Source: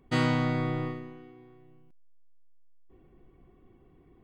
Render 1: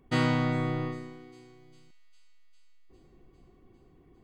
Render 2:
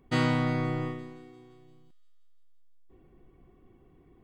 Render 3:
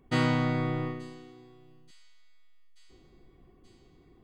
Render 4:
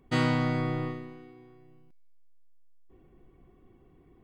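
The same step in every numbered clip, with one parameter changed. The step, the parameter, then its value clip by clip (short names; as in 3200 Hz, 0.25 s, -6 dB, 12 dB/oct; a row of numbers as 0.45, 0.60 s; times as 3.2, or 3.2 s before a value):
thin delay, time: 402, 173, 881, 96 ms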